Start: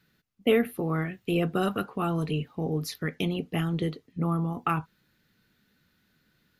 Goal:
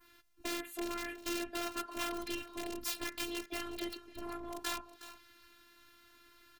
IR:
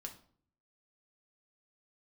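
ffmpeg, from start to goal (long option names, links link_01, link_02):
-filter_complex "[0:a]asplit=4[link_01][link_02][link_03][link_04];[link_02]asetrate=29433,aresample=44100,atempo=1.49831,volume=-8dB[link_05];[link_03]asetrate=35002,aresample=44100,atempo=1.25992,volume=-14dB[link_06];[link_04]asetrate=55563,aresample=44100,atempo=0.793701,volume=-12dB[link_07];[link_01][link_05][link_06][link_07]amix=inputs=4:normalize=0,adynamicequalizer=threshold=0.00447:dfrequency=3900:dqfactor=0.86:tfrequency=3900:tqfactor=0.86:attack=5:release=100:ratio=0.375:range=3:mode=boostabove:tftype=bell,acompressor=threshold=-37dB:ratio=16,asoftclip=type=hard:threshold=-37.5dB,equalizer=frequency=130:width_type=o:width=3:gain=-7,aeval=exprs='(mod(89.1*val(0)+1,2)-1)/89.1':channel_layout=same,afftfilt=real='hypot(re,im)*cos(PI*b)':imag='0':win_size=512:overlap=0.75,aecho=1:1:365:0.188,volume=11dB"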